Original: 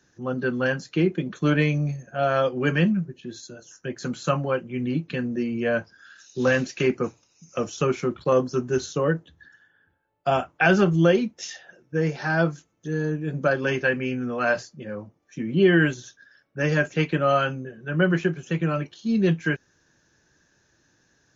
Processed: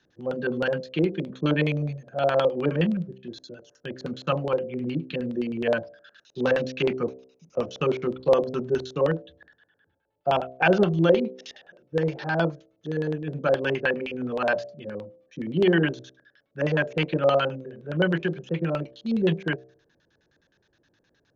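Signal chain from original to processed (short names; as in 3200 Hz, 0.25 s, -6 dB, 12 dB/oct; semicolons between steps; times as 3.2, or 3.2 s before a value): LFO low-pass square 9.6 Hz 540–3600 Hz; de-hum 64.51 Hz, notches 11; dynamic EQ 900 Hz, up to +5 dB, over -37 dBFS, Q 2.7; gain -3.5 dB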